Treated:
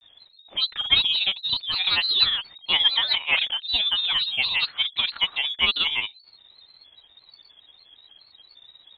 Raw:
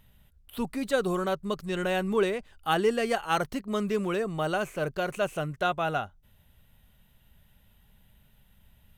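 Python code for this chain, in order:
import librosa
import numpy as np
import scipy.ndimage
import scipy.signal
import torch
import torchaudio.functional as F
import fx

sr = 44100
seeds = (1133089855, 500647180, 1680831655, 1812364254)

y = fx.freq_invert(x, sr, carrier_hz=3800)
y = fx.granulator(y, sr, seeds[0], grain_ms=100.0, per_s=17.0, spray_ms=25.0, spread_st=3)
y = y * librosa.db_to_amplitude(7.0)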